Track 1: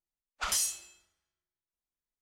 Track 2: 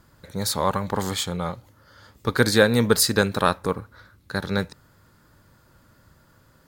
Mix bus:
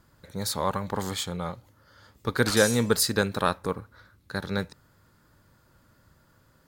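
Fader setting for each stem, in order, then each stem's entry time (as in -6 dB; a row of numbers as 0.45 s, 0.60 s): -1.0 dB, -4.5 dB; 2.05 s, 0.00 s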